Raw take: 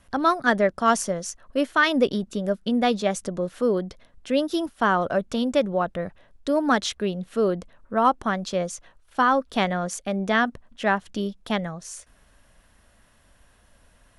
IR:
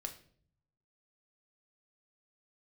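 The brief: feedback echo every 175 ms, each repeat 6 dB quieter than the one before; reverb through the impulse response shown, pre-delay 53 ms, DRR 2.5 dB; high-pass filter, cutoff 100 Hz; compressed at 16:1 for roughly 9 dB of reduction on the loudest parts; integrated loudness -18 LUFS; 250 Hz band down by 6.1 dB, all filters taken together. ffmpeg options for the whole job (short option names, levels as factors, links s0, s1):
-filter_complex "[0:a]highpass=100,equalizer=f=250:t=o:g=-7.5,acompressor=threshold=0.0708:ratio=16,aecho=1:1:175|350|525|700|875|1050:0.501|0.251|0.125|0.0626|0.0313|0.0157,asplit=2[s0][s1];[1:a]atrim=start_sample=2205,adelay=53[s2];[s1][s2]afir=irnorm=-1:irlink=0,volume=0.944[s3];[s0][s3]amix=inputs=2:normalize=0,volume=2.99"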